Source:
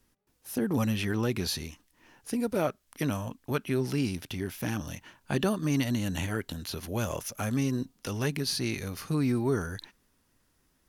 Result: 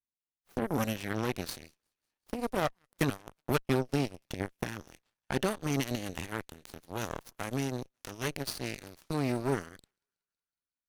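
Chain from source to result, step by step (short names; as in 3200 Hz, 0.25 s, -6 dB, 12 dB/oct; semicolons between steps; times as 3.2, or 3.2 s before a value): 2.57–4.64 transient shaper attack +6 dB, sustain -11 dB; thinning echo 0.185 s, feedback 77%, high-pass 590 Hz, level -18 dB; added harmonics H 5 -27 dB, 6 -20 dB, 7 -15 dB, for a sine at -13.5 dBFS; gain -3 dB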